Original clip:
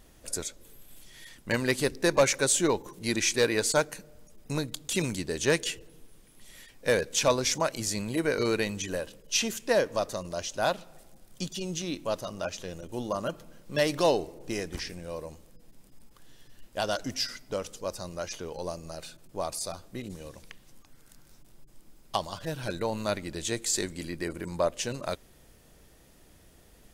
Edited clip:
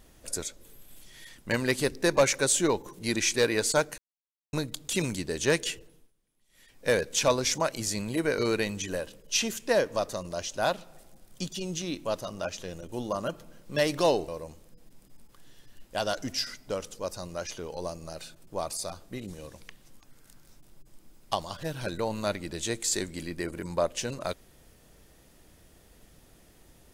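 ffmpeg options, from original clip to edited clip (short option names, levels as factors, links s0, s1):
-filter_complex "[0:a]asplit=6[s0][s1][s2][s3][s4][s5];[s0]atrim=end=3.98,asetpts=PTS-STARTPTS,afade=t=out:st=3.976:d=0.004:c=hsin[s6];[s1]atrim=start=3.98:end=4.53,asetpts=PTS-STARTPTS,volume=0[s7];[s2]atrim=start=4.53:end=6.13,asetpts=PTS-STARTPTS,afade=t=in:d=0.004:c=hsin,afade=t=out:st=1.21:d=0.39:silence=0.0944061[s8];[s3]atrim=start=6.13:end=6.49,asetpts=PTS-STARTPTS,volume=0.0944[s9];[s4]atrim=start=6.49:end=14.282,asetpts=PTS-STARTPTS,afade=t=in:d=0.39:silence=0.0944061[s10];[s5]atrim=start=15.098[s11];[s6][s7][s8][s9][s10]concat=n=5:v=0:a=1[s12];[s12][s11]acrossfade=d=0.004:c1=hsin:c2=hsin"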